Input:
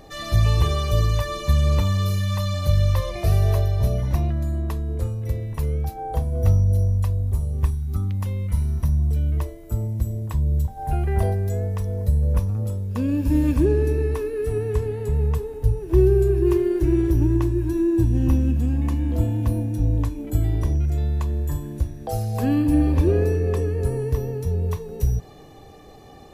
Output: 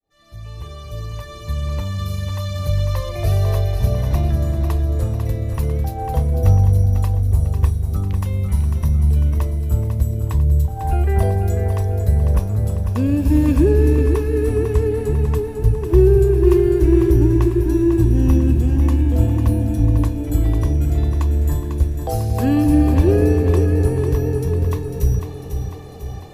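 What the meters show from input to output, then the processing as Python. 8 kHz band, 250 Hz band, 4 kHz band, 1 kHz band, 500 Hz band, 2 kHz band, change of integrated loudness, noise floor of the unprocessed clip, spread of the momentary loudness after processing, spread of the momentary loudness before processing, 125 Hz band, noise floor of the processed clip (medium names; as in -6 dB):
+2.5 dB, +4.5 dB, no reading, +3.0 dB, +4.5 dB, +2.0 dB, +4.5 dB, -42 dBFS, 10 LU, 7 LU, +4.0 dB, -33 dBFS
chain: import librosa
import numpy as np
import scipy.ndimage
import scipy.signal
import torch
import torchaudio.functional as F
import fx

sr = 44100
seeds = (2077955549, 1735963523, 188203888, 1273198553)

p1 = fx.fade_in_head(x, sr, length_s=4.63)
p2 = p1 + fx.echo_feedback(p1, sr, ms=498, feedback_pct=53, wet_db=-7.5, dry=0)
y = p2 * 10.0 ** (4.0 / 20.0)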